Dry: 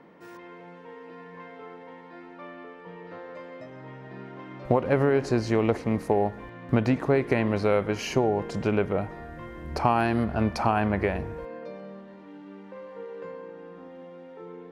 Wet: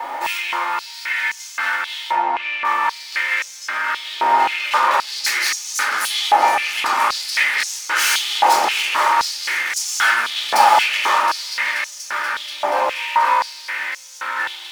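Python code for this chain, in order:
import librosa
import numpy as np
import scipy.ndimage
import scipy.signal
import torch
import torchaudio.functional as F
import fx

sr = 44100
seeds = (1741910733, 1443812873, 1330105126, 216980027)

p1 = fx.lower_of_two(x, sr, delay_ms=3.3)
p2 = fx.high_shelf(p1, sr, hz=5700.0, db=10.5)
p3 = fx.over_compress(p2, sr, threshold_db=-35.0, ratio=-1.0)
p4 = p2 + F.gain(torch.from_numpy(p3), -2.0).numpy()
p5 = 10.0 ** (-23.0 / 20.0) * np.tanh(p4 / 10.0 ** (-23.0 / 20.0))
p6 = fx.echo_heads(p5, sr, ms=240, heads='all three', feedback_pct=74, wet_db=-16.5)
p7 = fx.fold_sine(p6, sr, drive_db=7, ceiling_db=-20.0)
p8 = fx.dmg_noise_colour(p7, sr, seeds[0], colour='pink', level_db=-53.0)
p9 = fx.spacing_loss(p8, sr, db_at_10k=22, at=(2.11, 2.65))
p10 = fx.room_shoebox(p9, sr, seeds[1], volume_m3=930.0, walls='furnished', distance_m=4.1)
y = fx.filter_held_highpass(p10, sr, hz=3.8, low_hz=810.0, high_hz=6200.0)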